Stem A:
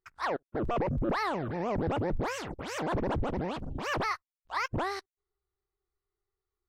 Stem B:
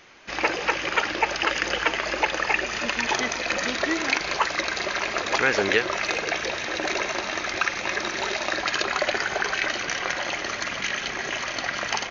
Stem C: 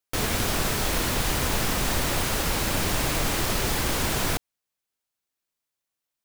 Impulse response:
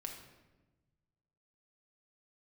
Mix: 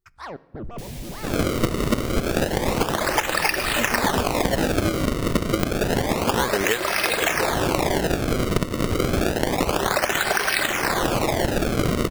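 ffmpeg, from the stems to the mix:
-filter_complex "[0:a]bass=frequency=250:gain=11,treble=frequency=4000:gain=4,alimiter=limit=-20dB:level=0:latency=1:release=123,volume=-1.5dB,asplit=2[link_01][link_02];[link_02]volume=-14.5dB[link_03];[1:a]dynaudnorm=framelen=110:gausssize=5:maxgain=11.5dB,acrusher=samples=30:mix=1:aa=0.000001:lfo=1:lforange=48:lforate=0.29,adelay=950,volume=0.5dB[link_04];[2:a]equalizer=frequency=1300:width_type=o:width=0.71:gain=-15,adelay=650,volume=-6.5dB,asplit=2[link_05][link_06];[link_06]volume=-11.5dB[link_07];[link_01][link_05]amix=inputs=2:normalize=0,alimiter=level_in=4.5dB:limit=-24dB:level=0:latency=1:release=364,volume=-4.5dB,volume=0dB[link_08];[3:a]atrim=start_sample=2205[link_09];[link_03][link_07]amix=inputs=2:normalize=0[link_10];[link_10][link_09]afir=irnorm=-1:irlink=0[link_11];[link_04][link_08][link_11]amix=inputs=3:normalize=0,acompressor=threshold=-17dB:ratio=6"

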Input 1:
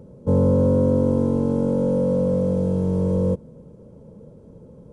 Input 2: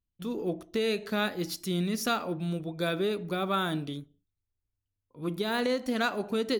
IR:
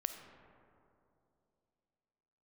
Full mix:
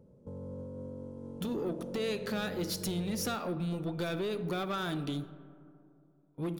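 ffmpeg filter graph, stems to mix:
-filter_complex "[0:a]alimiter=limit=-20dB:level=0:latency=1:release=299,volume=-15dB[link_01];[1:a]agate=range=-30dB:threshold=-47dB:ratio=16:detection=peak,acompressor=threshold=-35dB:ratio=10,asoftclip=type=tanh:threshold=-35.5dB,adelay=1200,volume=2.5dB,asplit=2[link_02][link_03];[link_03]volume=-3dB[link_04];[2:a]atrim=start_sample=2205[link_05];[link_04][link_05]afir=irnorm=-1:irlink=0[link_06];[link_01][link_02][link_06]amix=inputs=3:normalize=0"

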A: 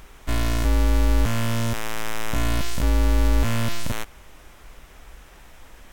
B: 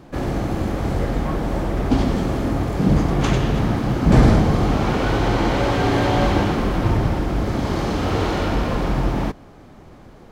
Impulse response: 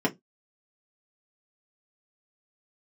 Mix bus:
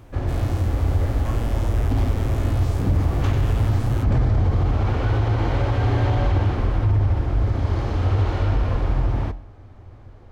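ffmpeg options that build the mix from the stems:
-filter_complex "[0:a]volume=-11dB[link_01];[1:a]lowpass=frequency=3300:poles=1,lowshelf=frequency=130:width_type=q:width=3:gain=7.5,flanger=delay=7.5:depth=4:regen=-86:speed=0.48:shape=sinusoidal,volume=-1dB[link_02];[link_01][link_02]amix=inputs=2:normalize=0,alimiter=limit=-11.5dB:level=0:latency=1:release=42"

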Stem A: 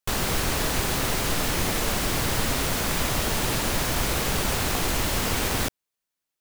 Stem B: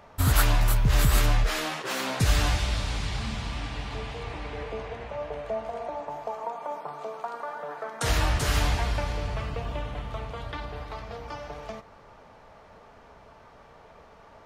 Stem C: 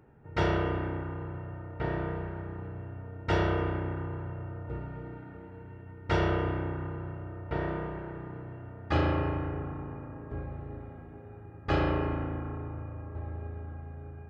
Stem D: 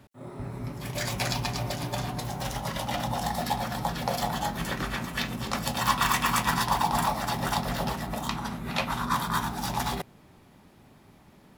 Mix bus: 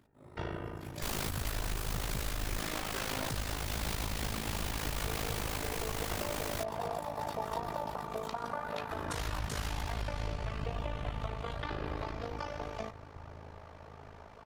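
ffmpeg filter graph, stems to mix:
ffmpeg -i stem1.wav -i stem2.wav -i stem3.wav -i stem4.wav -filter_complex "[0:a]volume=24dB,asoftclip=hard,volume=-24dB,adelay=950,volume=2.5dB[link_01];[1:a]adelay=1100,volume=2dB[link_02];[2:a]volume=-9dB[link_03];[3:a]volume=-10dB[link_04];[link_01][link_04]amix=inputs=2:normalize=0,acompressor=threshold=-36dB:ratio=2,volume=0dB[link_05];[link_02][link_03]amix=inputs=2:normalize=0,acompressor=threshold=-27dB:ratio=6,volume=0dB[link_06];[link_05][link_06]amix=inputs=2:normalize=0,tremolo=f=53:d=0.788,alimiter=level_in=0.5dB:limit=-24dB:level=0:latency=1:release=212,volume=-0.5dB" out.wav

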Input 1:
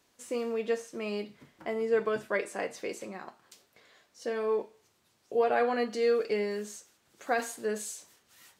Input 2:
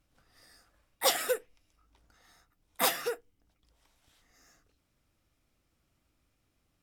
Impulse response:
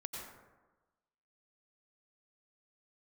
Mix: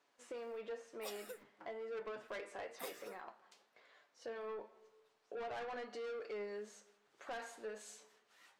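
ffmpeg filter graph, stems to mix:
-filter_complex "[0:a]highpass=660,aemphasis=mode=reproduction:type=riaa,asoftclip=type=tanh:threshold=-32.5dB,volume=1dB,asplit=2[link_01][link_02];[link_02]volume=-18dB[link_03];[1:a]acrusher=bits=8:mix=0:aa=0.000001,volume=-13dB[link_04];[2:a]atrim=start_sample=2205[link_05];[link_03][link_05]afir=irnorm=-1:irlink=0[link_06];[link_01][link_04][link_06]amix=inputs=3:normalize=0,flanger=delay=6.8:depth=3.2:regen=73:speed=1:shape=sinusoidal,acompressor=threshold=-46dB:ratio=2"

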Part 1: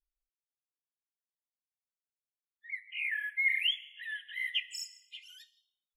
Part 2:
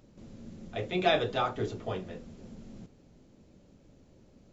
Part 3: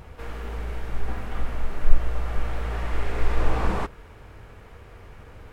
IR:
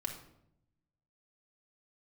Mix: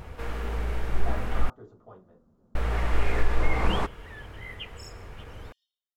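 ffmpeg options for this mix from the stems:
-filter_complex "[0:a]acontrast=68,adelay=50,volume=-14.5dB[link_01];[1:a]highshelf=frequency=1700:width_type=q:width=3:gain=-11.5,volume=-16dB[link_02];[2:a]alimiter=limit=-13dB:level=0:latency=1:release=387,volume=2dB,asplit=3[link_03][link_04][link_05];[link_03]atrim=end=1.5,asetpts=PTS-STARTPTS,afade=type=out:start_time=1.496:duration=0.004:curve=hsin[link_06];[link_04]atrim=start=1.5:end=2.55,asetpts=PTS-STARTPTS,volume=0[link_07];[link_05]atrim=start=2.55,asetpts=PTS-STARTPTS,afade=type=in:duration=0.004:curve=hsin[link_08];[link_06][link_07][link_08]concat=n=3:v=0:a=1[link_09];[link_01][link_02][link_09]amix=inputs=3:normalize=0"

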